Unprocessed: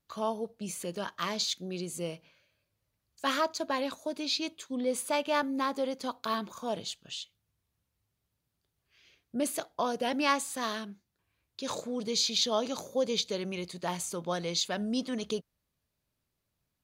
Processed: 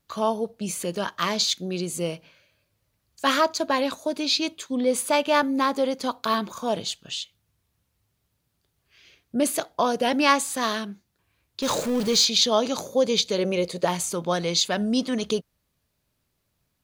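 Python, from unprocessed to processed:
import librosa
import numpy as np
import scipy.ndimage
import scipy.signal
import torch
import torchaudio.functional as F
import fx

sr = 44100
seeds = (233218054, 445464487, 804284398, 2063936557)

y = fx.zero_step(x, sr, step_db=-36.5, at=(11.62, 12.25))
y = fx.peak_eq(y, sr, hz=510.0, db=14.0, octaves=0.53, at=(13.38, 13.85))
y = y * librosa.db_to_amplitude(8.0)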